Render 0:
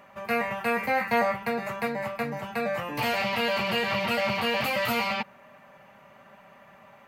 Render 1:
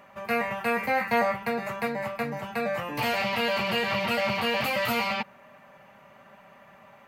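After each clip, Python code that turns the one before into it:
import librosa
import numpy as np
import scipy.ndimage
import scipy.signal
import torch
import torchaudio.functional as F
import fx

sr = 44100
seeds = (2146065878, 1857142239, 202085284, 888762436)

y = x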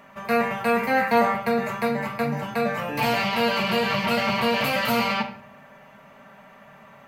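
y = fx.room_shoebox(x, sr, seeds[0], volume_m3=850.0, walls='furnished', distance_m=1.6)
y = y * librosa.db_to_amplitude(2.5)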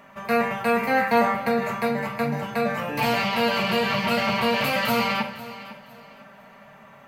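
y = fx.echo_feedback(x, sr, ms=505, feedback_pct=29, wet_db=-16)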